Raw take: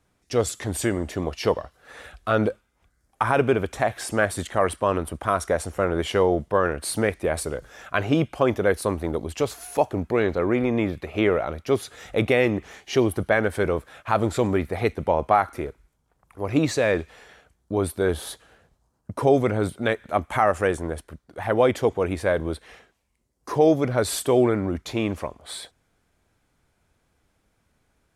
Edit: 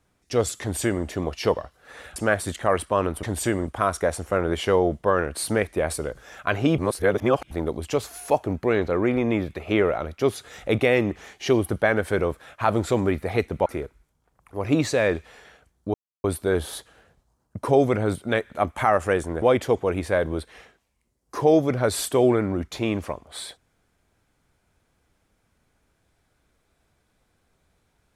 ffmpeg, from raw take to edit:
ffmpeg -i in.wav -filter_complex "[0:a]asplit=9[link_01][link_02][link_03][link_04][link_05][link_06][link_07][link_08][link_09];[link_01]atrim=end=2.162[link_10];[link_02]atrim=start=4.068:end=5.142[link_11];[link_03]atrim=start=0.608:end=1.052[link_12];[link_04]atrim=start=5.138:end=8.252[link_13];[link_05]atrim=start=8.248:end=8.982,asetpts=PTS-STARTPTS,areverse[link_14];[link_06]atrim=start=8.978:end=15.132[link_15];[link_07]atrim=start=15.498:end=17.78,asetpts=PTS-STARTPTS,afade=type=out:start_time=2.278:duration=0.004:curve=hsin,apad=pad_dur=0.3[link_16];[link_08]atrim=start=17.78:end=20.962,asetpts=PTS-STARTPTS,afade=type=in:duration=0.004:curve=hsin[link_17];[link_09]atrim=start=21.558[link_18];[link_10][link_11]acrossfade=duration=0.004:curve1=hsin:curve2=hsin[link_19];[link_19][link_12]acrossfade=duration=0.004:curve1=hsin:curve2=hsin[link_20];[link_20][link_13]acrossfade=duration=0.004:curve1=hsin:curve2=hsin[link_21];[link_21][link_14]acrossfade=duration=0.004:curve1=hsin:curve2=hsin[link_22];[link_22][link_15]acrossfade=duration=0.004:curve1=hsin:curve2=hsin[link_23];[link_16][link_17]concat=n=2:v=0:a=1[link_24];[link_23][link_24]acrossfade=duration=0.004:curve1=hsin:curve2=hsin[link_25];[link_25][link_18]acrossfade=duration=0.004:curve1=hsin:curve2=hsin" out.wav

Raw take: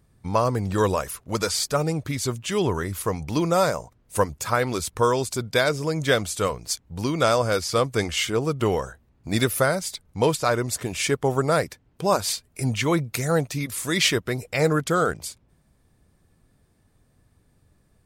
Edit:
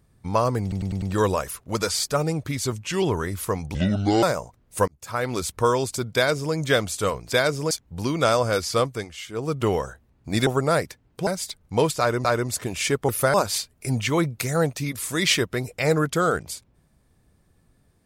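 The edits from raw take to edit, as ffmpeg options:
ffmpeg -i in.wav -filter_complex "[0:a]asplit=19[link_01][link_02][link_03][link_04][link_05][link_06][link_07][link_08][link_09][link_10][link_11][link_12][link_13][link_14][link_15][link_16][link_17][link_18][link_19];[link_01]atrim=end=0.722[link_20];[link_02]atrim=start=0.618:end=0.722[link_21];[link_03]atrim=start=0.618:end=0.722[link_22];[link_04]atrim=start=0.618:end=0.722[link_23];[link_05]atrim=start=0.618:end=2.324[link_24];[link_06]atrim=start=2.32:end=2.6,asetpts=PTS-STARTPTS,asetrate=40572,aresample=44100[link_25];[link_07]atrim=start=2.596:end=3.324[link_26];[link_08]atrim=start=3.32:end=3.61,asetpts=PTS-STARTPTS,asetrate=26460,aresample=44100[link_27];[link_09]atrim=start=3.606:end=4.26,asetpts=PTS-STARTPTS,afade=type=out:start_time=0.65:duration=0.004:curve=hsin[link_28];[link_10]atrim=start=4.26:end=6.702,asetpts=PTS-STARTPTS,afade=type=in:duration=0.5[link_29];[link_11]atrim=start=5.528:end=5.922[link_30];[link_12]atrim=start=6.698:end=8.06,asetpts=PTS-STARTPTS,afade=type=out:start_time=1.102:duration=0.26:silence=0.237137[link_31];[link_13]atrim=start=8.06:end=8.28,asetpts=PTS-STARTPTS,volume=-12.5dB[link_32];[link_14]atrim=start=8.28:end=9.462,asetpts=PTS-STARTPTS,afade=type=in:duration=0.26:silence=0.237137[link_33];[link_15]atrim=start=11.278:end=12.082[link_34];[link_16]atrim=start=9.708:end=10.692[link_35];[link_17]atrim=start=10.438:end=11.282[link_36];[link_18]atrim=start=9.458:end=9.712[link_37];[link_19]atrim=start=12.078[link_38];[link_20][link_21]acrossfade=duration=0.004:curve1=hsin:curve2=hsin[link_39];[link_39][link_22]acrossfade=duration=0.004:curve1=hsin:curve2=hsin[link_40];[link_40][link_23]acrossfade=duration=0.004:curve1=hsin:curve2=hsin[link_41];[link_41][link_24]acrossfade=duration=0.004:curve1=hsin:curve2=hsin[link_42];[link_42][link_25]acrossfade=duration=0.004:curve1=hsin:curve2=hsin[link_43];[link_43][link_26]acrossfade=duration=0.004:curve1=hsin:curve2=hsin[link_44];[link_44][link_27]acrossfade=duration=0.004:curve1=hsin:curve2=hsin[link_45];[link_28][link_29]concat=n=2:v=0:a=1[link_46];[link_45][link_46]acrossfade=duration=0.004:curve1=hsin:curve2=hsin[link_47];[link_47][link_30]acrossfade=duration=0.004:curve1=hsin:curve2=hsin[link_48];[link_31][link_32][link_33]concat=n=3:v=0:a=1[link_49];[link_48][link_49]acrossfade=duration=0.004:curve1=hsin:curve2=hsin[link_50];[link_50][link_34]acrossfade=duration=0.004:curve1=hsin:curve2=hsin[link_51];[link_51][link_35]acrossfade=duration=0.004:curve1=hsin:curve2=hsin[link_52];[link_52][link_36]acrossfade=duration=0.004:curve1=hsin:curve2=hsin[link_53];[link_53][link_37]acrossfade=duration=0.004:curve1=hsin:curve2=hsin[link_54];[link_54][link_38]acrossfade=duration=0.004:curve1=hsin:curve2=hsin" out.wav

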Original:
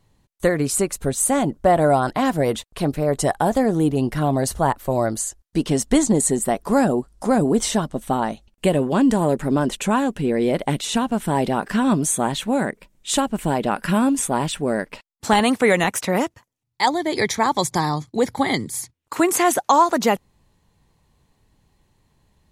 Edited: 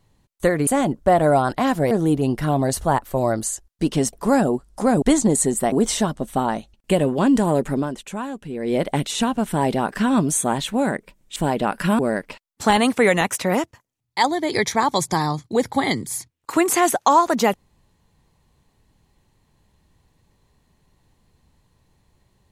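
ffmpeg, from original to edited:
ffmpeg -i in.wav -filter_complex "[0:a]asplit=10[link_01][link_02][link_03][link_04][link_05][link_06][link_07][link_08][link_09][link_10];[link_01]atrim=end=0.672[link_11];[link_02]atrim=start=1.248:end=2.492[link_12];[link_03]atrim=start=3.648:end=5.872[link_13];[link_04]atrim=start=6.568:end=7.462[link_14];[link_05]atrim=start=5.868:end=6.572[link_15];[link_06]atrim=start=7.458:end=9.73,asetpts=PTS-STARTPTS,afade=type=out:start_time=2.012:duration=0.26:curve=qua:silence=0.334965[link_16];[link_07]atrim=start=9.73:end=10.24,asetpts=PTS-STARTPTS,volume=-9.5dB[link_17];[link_08]atrim=start=10.24:end=13.102,asetpts=PTS-STARTPTS,afade=type=in:duration=0.26:curve=qua:silence=0.334965[link_18];[link_09]atrim=start=13.398:end=14.032[link_19];[link_10]atrim=start=14.618[link_20];[link_11][link_12]acrossfade=duration=0.004:curve1=hsin:curve2=hsin[link_21];[link_21][link_13]acrossfade=duration=0.004:curve1=hsin:curve2=hsin[link_22];[link_22][link_14]acrossfade=duration=0.004:curve1=hsin:curve2=hsin[link_23];[link_23][link_15]acrossfade=duration=0.004:curve1=hsin:curve2=hsin[link_24];[link_16][link_17][link_18]concat=n=3:v=0:a=1[link_25];[link_24][link_25]acrossfade=duration=0.004:curve1=hsin:curve2=hsin[link_26];[link_26][link_19]acrossfade=duration=0.004:curve1=hsin:curve2=hsin[link_27];[link_27][link_20]acrossfade=duration=0.004:curve1=hsin:curve2=hsin" out.wav

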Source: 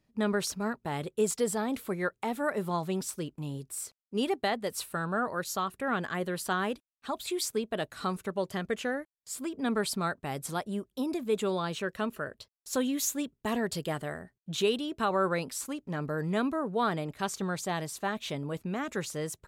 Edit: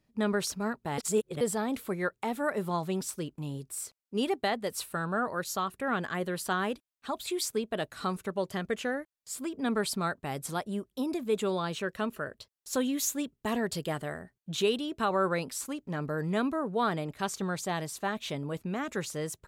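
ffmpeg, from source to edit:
ffmpeg -i in.wav -filter_complex "[0:a]asplit=3[link_01][link_02][link_03];[link_01]atrim=end=0.982[link_04];[link_02]atrim=start=0.978:end=1.412,asetpts=PTS-STARTPTS,areverse[link_05];[link_03]atrim=start=1.408[link_06];[link_04][link_05]acrossfade=duration=0.004:curve1=hsin:curve2=hsin[link_07];[link_07][link_06]acrossfade=duration=0.004:curve1=hsin:curve2=hsin" out.wav

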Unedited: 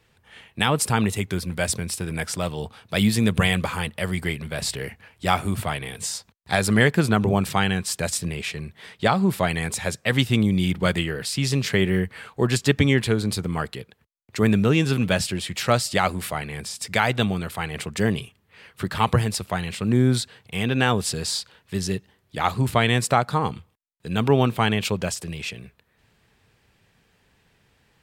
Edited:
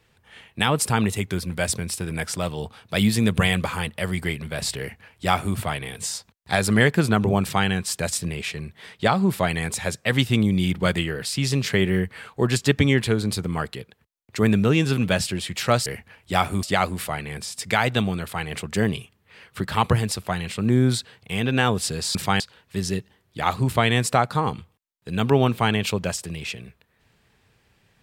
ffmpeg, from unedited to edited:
ffmpeg -i in.wav -filter_complex "[0:a]asplit=5[link_01][link_02][link_03][link_04][link_05];[link_01]atrim=end=15.862[link_06];[link_02]atrim=start=4.788:end=5.562[link_07];[link_03]atrim=start=15.858:end=21.382[link_08];[link_04]atrim=start=7.418:end=7.672[link_09];[link_05]atrim=start=21.378[link_10];[link_06][link_07]acrossfade=duration=0.004:curve1=hsin:curve2=hsin[link_11];[link_11][link_08]acrossfade=duration=0.004:curve1=hsin:curve2=hsin[link_12];[link_12][link_09]acrossfade=duration=0.004:curve1=hsin:curve2=hsin[link_13];[link_13][link_10]acrossfade=duration=0.004:curve1=hsin:curve2=hsin" out.wav

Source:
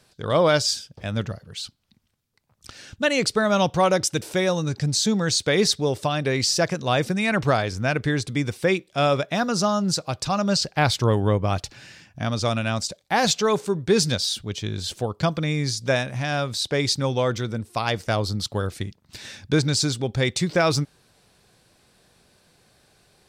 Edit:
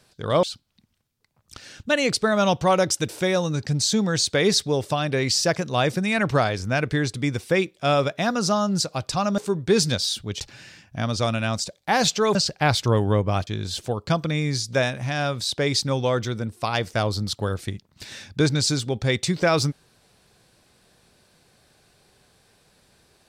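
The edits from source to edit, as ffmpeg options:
ffmpeg -i in.wav -filter_complex "[0:a]asplit=6[link_01][link_02][link_03][link_04][link_05][link_06];[link_01]atrim=end=0.432[link_07];[link_02]atrim=start=1.558:end=10.512[link_08];[link_03]atrim=start=13.578:end=14.602[link_09];[link_04]atrim=start=11.628:end=13.582[link_10];[link_05]atrim=start=10.508:end=11.632[link_11];[link_06]atrim=start=14.598[link_12];[link_07][link_08]acrossfade=duration=0.004:curve1=hsin:curve2=hsin[link_13];[link_13][link_09]acrossfade=duration=0.004:curve1=hsin:curve2=hsin[link_14];[link_14][link_10]acrossfade=duration=0.004:curve1=hsin:curve2=hsin[link_15];[link_15][link_11]acrossfade=duration=0.004:curve1=hsin:curve2=hsin[link_16];[link_16][link_12]acrossfade=duration=0.004:curve1=hsin:curve2=hsin" out.wav

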